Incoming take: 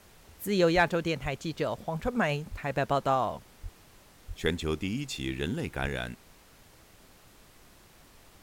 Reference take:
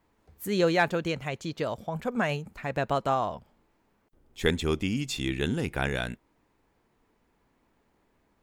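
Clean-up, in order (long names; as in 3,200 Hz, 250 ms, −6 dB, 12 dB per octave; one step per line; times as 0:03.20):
click removal
high-pass at the plosives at 0:00.74/0:01.22/0:02.02/0:02.50/0:03.62/0:04.27/0:05.81
noise reduction from a noise print 13 dB
level 0 dB, from 0:03.81 +3.5 dB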